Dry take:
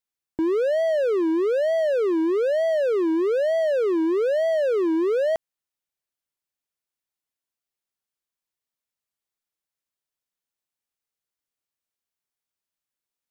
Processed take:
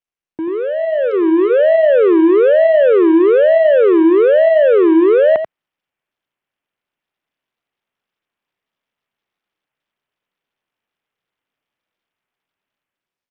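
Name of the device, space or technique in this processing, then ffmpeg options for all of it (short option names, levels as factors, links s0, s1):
Bluetooth headset: -filter_complex "[0:a]asettb=1/sr,asplit=3[s0][s1][s2];[s0]atrim=end=0.984[s3];[s1]atrim=start=0.98:end=1.7,asetpts=PTS-STARTPTS,afade=t=in:d=0.004:c=qsin,afade=t=out:st=0.716:d=0.004:c=qsin,bandreject=f=440:w=12[s4];[s2]atrim=start=1.696[s5];[s3][s4]acrossfade=d=0.004:c1=hsin:c2=qsin[s6];[s6][s5]acrossfade=d=0.004:c1=qsin:c2=hsin,highpass=110,aecho=1:1:87:0.355,dynaudnorm=f=750:g=3:m=4.22,aresample=8000,aresample=44100" -ar 48000 -c:a sbc -b:a 64k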